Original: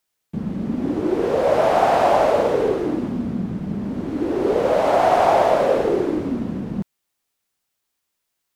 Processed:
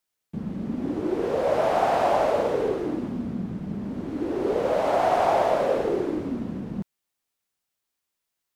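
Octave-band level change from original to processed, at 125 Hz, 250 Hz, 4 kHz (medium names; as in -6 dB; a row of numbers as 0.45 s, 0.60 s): -5.5 dB, -5.5 dB, -5.5 dB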